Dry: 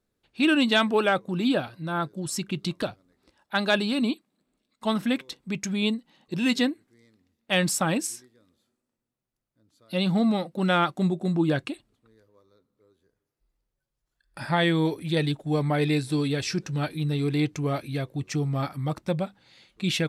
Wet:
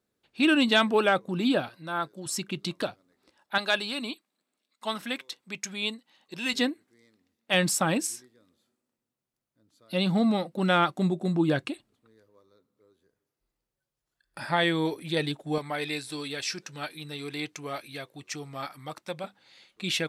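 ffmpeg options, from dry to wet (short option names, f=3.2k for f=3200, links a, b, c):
-af "asetnsamples=n=441:p=0,asendcmd='1.69 highpass f 550;2.26 highpass f 270;3.58 highpass f 950;6.54 highpass f 280;7.54 highpass f 130;14.4 highpass f 340;15.58 highpass f 1100;19.24 highpass f 450',highpass=f=150:p=1"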